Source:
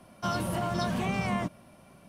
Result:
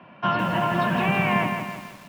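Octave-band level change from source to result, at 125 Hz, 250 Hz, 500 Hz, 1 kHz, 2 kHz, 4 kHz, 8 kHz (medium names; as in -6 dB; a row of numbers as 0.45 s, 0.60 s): +5.5 dB, +6.0 dB, +7.0 dB, +9.5 dB, +12.0 dB, +6.0 dB, -5.0 dB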